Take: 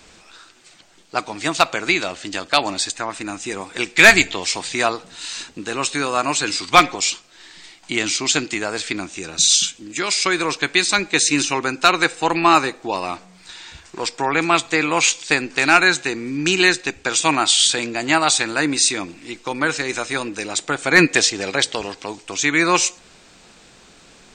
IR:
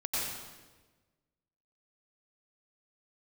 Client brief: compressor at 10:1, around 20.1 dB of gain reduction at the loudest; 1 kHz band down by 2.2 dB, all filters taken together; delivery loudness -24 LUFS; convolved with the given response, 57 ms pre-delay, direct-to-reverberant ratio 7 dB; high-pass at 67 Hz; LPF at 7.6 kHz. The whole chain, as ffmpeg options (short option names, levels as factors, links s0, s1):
-filter_complex "[0:a]highpass=67,lowpass=7600,equalizer=f=1000:t=o:g=-3,acompressor=threshold=0.0447:ratio=10,asplit=2[s0][s1];[1:a]atrim=start_sample=2205,adelay=57[s2];[s1][s2]afir=irnorm=-1:irlink=0,volume=0.211[s3];[s0][s3]amix=inputs=2:normalize=0,volume=2.11"